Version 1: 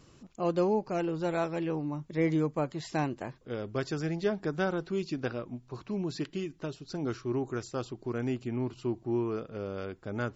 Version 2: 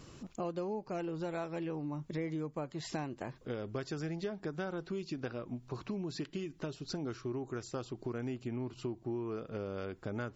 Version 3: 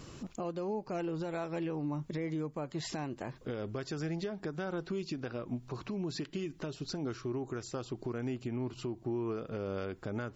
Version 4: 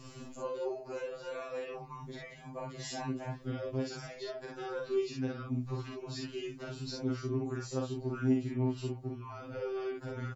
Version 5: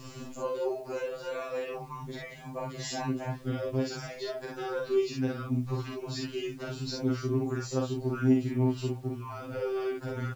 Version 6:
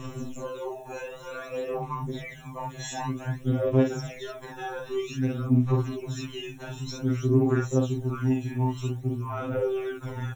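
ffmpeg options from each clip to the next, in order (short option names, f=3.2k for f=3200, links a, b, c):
-af "acompressor=threshold=-41dB:ratio=5,volume=4.5dB"
-af "alimiter=level_in=8dB:limit=-24dB:level=0:latency=1:release=159,volume=-8dB,volume=4dB"
-filter_complex "[0:a]asplit=2[a][b];[b]aecho=0:1:38|57:0.596|0.708[c];[a][c]amix=inputs=2:normalize=0,afftfilt=real='re*2.45*eq(mod(b,6),0)':imag='im*2.45*eq(mod(b,6),0)':win_size=2048:overlap=0.75"
-af "acrusher=bits=10:mix=0:aa=0.000001,volume=5dB"
-af "aphaser=in_gain=1:out_gain=1:delay=1.2:decay=0.64:speed=0.53:type=sinusoidal,asuperstop=centerf=4700:order=20:qfactor=4.1"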